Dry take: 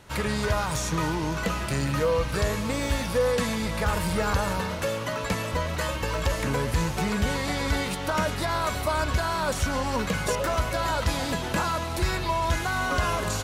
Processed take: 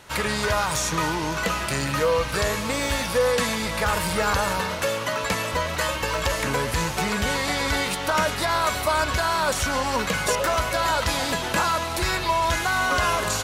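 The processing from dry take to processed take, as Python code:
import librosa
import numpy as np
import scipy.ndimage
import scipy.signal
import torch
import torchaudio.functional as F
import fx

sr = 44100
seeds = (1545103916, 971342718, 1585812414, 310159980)

y = fx.low_shelf(x, sr, hz=400.0, db=-9.0)
y = F.gain(torch.from_numpy(y), 6.0).numpy()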